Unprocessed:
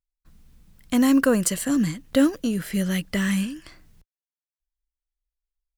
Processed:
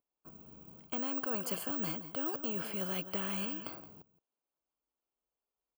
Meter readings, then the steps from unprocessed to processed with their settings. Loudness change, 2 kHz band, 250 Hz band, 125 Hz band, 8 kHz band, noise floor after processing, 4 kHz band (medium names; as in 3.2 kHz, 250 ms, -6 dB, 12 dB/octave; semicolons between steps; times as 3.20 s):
-13.0 dB, -15.0 dB, -20.0 dB, -17.5 dB, -18.5 dB, under -85 dBFS, -11.0 dB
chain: high-pass 250 Hz 12 dB/octave; reverse; compression 10:1, threshold -28 dBFS, peak gain reduction 13.5 dB; reverse; boxcar filter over 23 samples; on a send: delay 170 ms -19 dB; on the sum: careless resampling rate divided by 2×, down none, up zero stuff; spectrum-flattening compressor 2:1; trim -2 dB